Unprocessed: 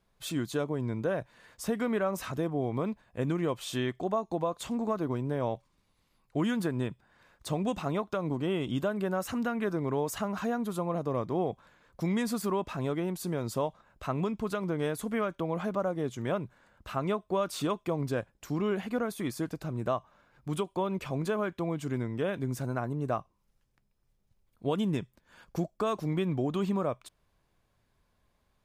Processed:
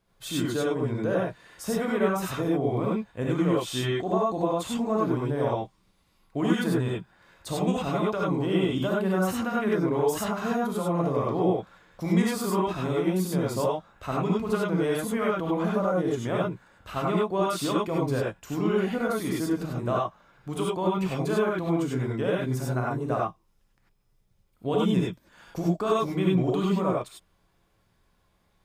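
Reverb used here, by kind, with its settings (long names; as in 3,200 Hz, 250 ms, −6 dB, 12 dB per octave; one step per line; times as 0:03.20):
reverb whose tail is shaped and stops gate 120 ms rising, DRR −4 dB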